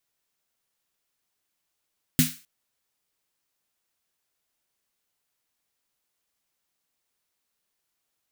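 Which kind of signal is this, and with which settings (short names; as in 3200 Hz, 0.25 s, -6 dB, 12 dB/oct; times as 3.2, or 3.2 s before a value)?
snare drum length 0.26 s, tones 160 Hz, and 250 Hz, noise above 1600 Hz, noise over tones -4 dB, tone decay 0.22 s, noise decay 0.37 s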